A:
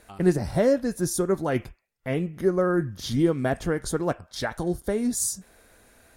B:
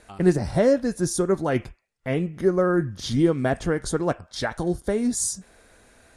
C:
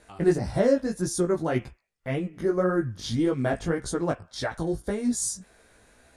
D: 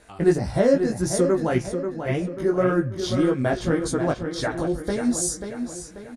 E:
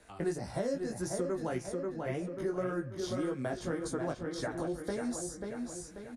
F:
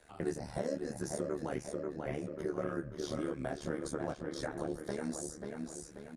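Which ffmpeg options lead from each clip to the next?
ffmpeg -i in.wav -af "lowpass=frequency=10000:width=0.5412,lowpass=frequency=10000:width=1.3066,volume=2dB" out.wav
ffmpeg -i in.wav -af "flanger=delay=15:depth=4.2:speed=1.8" out.wav
ffmpeg -i in.wav -filter_complex "[0:a]asplit=2[link_01][link_02];[link_02]adelay=538,lowpass=frequency=4600:poles=1,volume=-7.5dB,asplit=2[link_03][link_04];[link_04]adelay=538,lowpass=frequency=4600:poles=1,volume=0.46,asplit=2[link_05][link_06];[link_06]adelay=538,lowpass=frequency=4600:poles=1,volume=0.46,asplit=2[link_07][link_08];[link_08]adelay=538,lowpass=frequency=4600:poles=1,volume=0.46,asplit=2[link_09][link_10];[link_10]adelay=538,lowpass=frequency=4600:poles=1,volume=0.46[link_11];[link_01][link_03][link_05][link_07][link_09][link_11]amix=inputs=6:normalize=0,volume=3dB" out.wav
ffmpeg -i in.wav -filter_complex "[0:a]acrossover=split=120|390|2300|4800[link_01][link_02][link_03][link_04][link_05];[link_01]acompressor=threshold=-46dB:ratio=4[link_06];[link_02]acompressor=threshold=-32dB:ratio=4[link_07];[link_03]acompressor=threshold=-29dB:ratio=4[link_08];[link_04]acompressor=threshold=-55dB:ratio=4[link_09];[link_05]acompressor=threshold=-37dB:ratio=4[link_10];[link_06][link_07][link_08][link_09][link_10]amix=inputs=5:normalize=0,volume=-6.5dB" out.wav
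ffmpeg -i in.wav -af "tremolo=f=74:d=0.889,volume=1dB" out.wav

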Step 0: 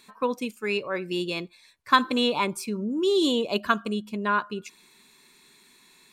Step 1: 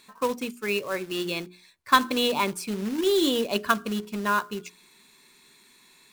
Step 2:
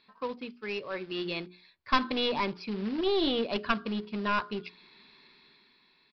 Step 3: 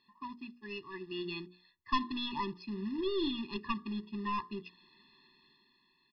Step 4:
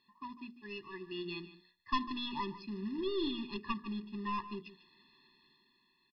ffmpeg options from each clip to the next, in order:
ffmpeg -i in.wav -af "acrusher=bits=3:mode=log:mix=0:aa=0.000001,bandreject=frequency=60:width_type=h:width=6,bandreject=frequency=120:width_type=h:width=6,bandreject=frequency=180:width_type=h:width=6,bandreject=frequency=240:width_type=h:width=6,bandreject=frequency=300:width_type=h:width=6,bandreject=frequency=360:width_type=h:width=6,bandreject=frequency=420:width_type=h:width=6" out.wav
ffmpeg -i in.wav -af "dynaudnorm=framelen=220:gausssize=9:maxgain=12dB,aresample=11025,aeval=exprs='clip(val(0),-1,0.1)':channel_layout=same,aresample=44100,volume=-8.5dB" out.wav
ffmpeg -i in.wav -af "afftfilt=real='re*eq(mod(floor(b*sr/1024/410),2),0)':imag='im*eq(mod(floor(b*sr/1024/410),2),0)':win_size=1024:overlap=0.75,volume=-4.5dB" out.wav
ffmpeg -i in.wav -af "aecho=1:1:148:0.178,volume=-2dB" out.wav

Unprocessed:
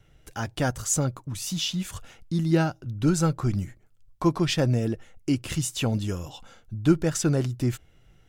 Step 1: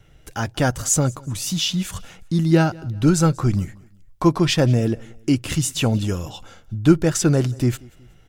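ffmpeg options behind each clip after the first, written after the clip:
ffmpeg -i in.wav -af "aecho=1:1:185|370:0.0631|0.024,volume=6dB" out.wav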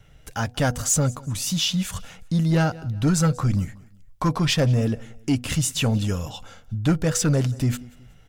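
ffmpeg -i in.wav -af "equalizer=frequency=350:width=6.8:gain=-13,bandreject=frequency=244.9:width_type=h:width=4,bandreject=frequency=489.8:width_type=h:width=4,bandreject=frequency=734.7:width_type=h:width=4,asoftclip=type=tanh:threshold=-12.5dB" out.wav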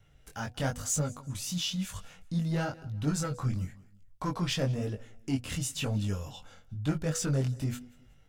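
ffmpeg -i in.wav -af "flanger=delay=19.5:depth=3.6:speed=1,volume=-6.5dB" out.wav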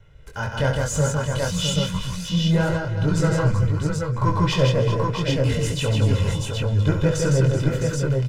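ffmpeg -i in.wav -af "lowpass=frequency=2600:poles=1,aecho=1:1:2:0.6,aecho=1:1:68|159|304|381|660|780:0.355|0.668|0.133|0.266|0.422|0.708,volume=8.5dB" out.wav

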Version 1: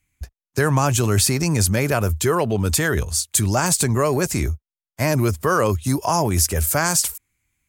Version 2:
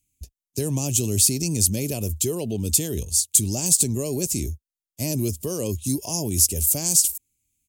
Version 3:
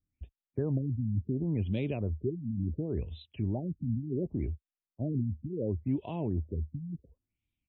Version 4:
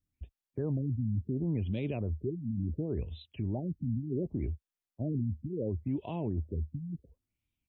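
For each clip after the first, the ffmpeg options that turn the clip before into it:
ffmpeg -i in.wav -af "firequalizer=gain_entry='entry(140,0);entry(250,4);entry(1400,-27);entry(2700,1);entry(4600,4);entry(6800,9)':delay=0.05:min_phase=1,volume=-6.5dB" out.wav
ffmpeg -i in.wav -af "afftfilt=real='re*lt(b*sr/1024,260*pow(4100/260,0.5+0.5*sin(2*PI*0.7*pts/sr)))':imag='im*lt(b*sr/1024,260*pow(4100/260,0.5+0.5*sin(2*PI*0.7*pts/sr)))':win_size=1024:overlap=0.75,volume=-5dB" out.wav
ffmpeg -i in.wav -af "alimiter=level_in=1dB:limit=-24dB:level=0:latency=1:release=16,volume=-1dB" out.wav

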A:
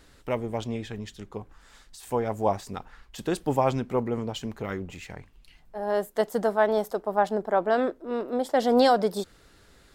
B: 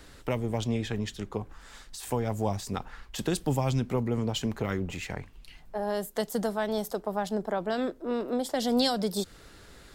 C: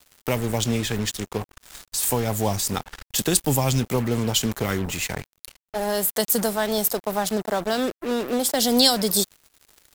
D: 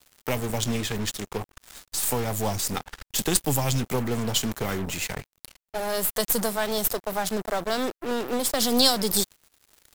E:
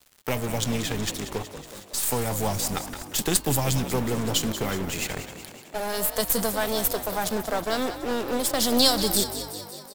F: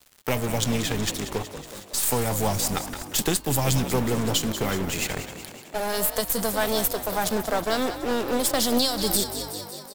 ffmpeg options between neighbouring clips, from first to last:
ffmpeg -i in.wav -filter_complex "[0:a]acrossover=split=200|3000[link_01][link_02][link_03];[link_02]acompressor=threshold=-34dB:ratio=6[link_04];[link_01][link_04][link_03]amix=inputs=3:normalize=0,volume=5dB" out.wav
ffmpeg -i in.wav -af "aemphasis=mode=production:type=75kf,acrusher=bits=5:mix=0:aa=0.5,volume=5dB" out.wav
ffmpeg -i in.wav -af "aeval=exprs='if(lt(val(0),0),0.447*val(0),val(0))':channel_layout=same" out.wav
ffmpeg -i in.wav -filter_complex "[0:a]bandreject=frequency=308.5:width_type=h:width=4,bandreject=frequency=617:width_type=h:width=4,bandreject=frequency=925.5:width_type=h:width=4,bandreject=frequency=1234:width_type=h:width=4,bandreject=frequency=1542.5:width_type=h:width=4,bandreject=frequency=1851:width_type=h:width=4,bandreject=frequency=2159.5:width_type=h:width=4,bandreject=frequency=2468:width_type=h:width=4,bandreject=frequency=2776.5:width_type=h:width=4,bandreject=frequency=3085:width_type=h:width=4,bandreject=frequency=3393.5:width_type=h:width=4,bandreject=frequency=3702:width_type=h:width=4,bandreject=frequency=4010.5:width_type=h:width=4,bandreject=frequency=4319:width_type=h:width=4,bandreject=frequency=4627.5:width_type=h:width=4,asplit=2[link_01][link_02];[link_02]asplit=8[link_03][link_04][link_05][link_06][link_07][link_08][link_09][link_10];[link_03]adelay=185,afreqshift=49,volume=-11.5dB[link_11];[link_04]adelay=370,afreqshift=98,volume=-15.4dB[link_12];[link_05]adelay=555,afreqshift=147,volume=-19.3dB[link_13];[link_06]adelay=740,afreqshift=196,volume=-23.1dB[link_14];[link_07]adelay=925,afreqshift=245,volume=-27dB[link_15];[link_08]adelay=1110,afreqshift=294,volume=-30.9dB[link_16];[link_09]adelay=1295,afreqshift=343,volume=-34.8dB[link_17];[link_10]adelay=1480,afreqshift=392,volume=-38.6dB[link_18];[link_11][link_12][link_13][link_14][link_15][link_16][link_17][link_18]amix=inputs=8:normalize=0[link_19];[link_01][link_19]amix=inputs=2:normalize=0" out.wav
ffmpeg -i in.wav -af "alimiter=limit=-10.5dB:level=0:latency=1:release=304,volume=2dB" out.wav

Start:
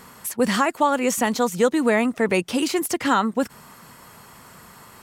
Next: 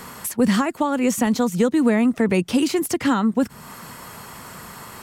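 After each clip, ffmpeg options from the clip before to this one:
ffmpeg -i in.wav -filter_complex "[0:a]acrossover=split=280[link_01][link_02];[link_02]acompressor=threshold=-38dB:ratio=2[link_03];[link_01][link_03]amix=inputs=2:normalize=0,volume=7.5dB" out.wav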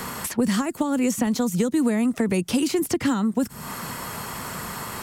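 ffmpeg -i in.wav -filter_complex "[0:a]acrossover=split=360|5600[link_01][link_02][link_03];[link_01]acompressor=threshold=-29dB:ratio=4[link_04];[link_02]acompressor=threshold=-36dB:ratio=4[link_05];[link_03]acompressor=threshold=-39dB:ratio=4[link_06];[link_04][link_05][link_06]amix=inputs=3:normalize=0,volume=6dB" out.wav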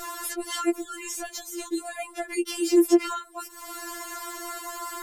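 ffmpeg -i in.wav -af "afftfilt=real='re*4*eq(mod(b,16),0)':imag='im*4*eq(mod(b,16),0)':win_size=2048:overlap=0.75" out.wav

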